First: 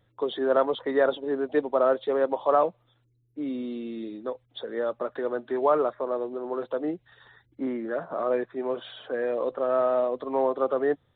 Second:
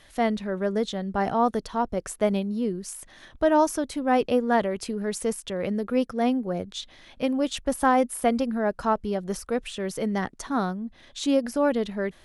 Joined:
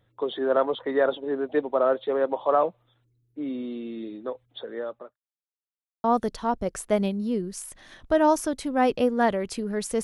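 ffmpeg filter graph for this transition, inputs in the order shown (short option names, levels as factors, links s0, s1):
-filter_complex "[0:a]apad=whole_dur=10.03,atrim=end=10.03,asplit=2[s0][s1];[s0]atrim=end=5.16,asetpts=PTS-STARTPTS,afade=t=out:st=4.38:d=0.78:c=qsin[s2];[s1]atrim=start=5.16:end=6.04,asetpts=PTS-STARTPTS,volume=0[s3];[1:a]atrim=start=1.35:end=5.34,asetpts=PTS-STARTPTS,afade=t=in:d=0.004:c=hsin[s4];[s2][s3][s4]concat=n=3:v=0:a=1"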